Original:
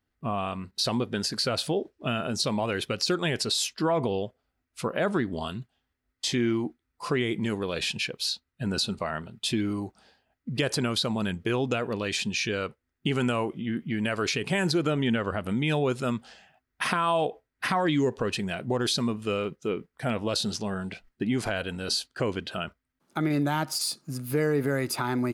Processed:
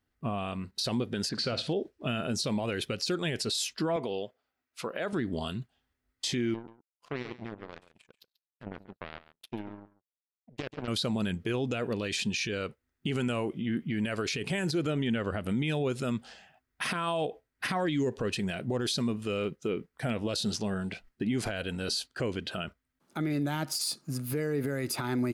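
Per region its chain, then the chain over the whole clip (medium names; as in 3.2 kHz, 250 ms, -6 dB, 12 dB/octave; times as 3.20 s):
1.29–1.73 s: low-pass 4.5 kHz + flutter echo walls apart 10.1 m, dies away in 0.25 s
3.96–5.13 s: high-pass 520 Hz 6 dB/octave + peaking EQ 9.1 kHz -6.5 dB 0.86 oct
6.54–10.88 s: low-pass that closes with the level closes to 1.7 kHz, closed at -26.5 dBFS + power-law waveshaper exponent 3 + delay 137 ms -16 dB
whole clip: dynamic bell 1 kHz, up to -6 dB, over -42 dBFS, Q 1.3; peak limiter -22 dBFS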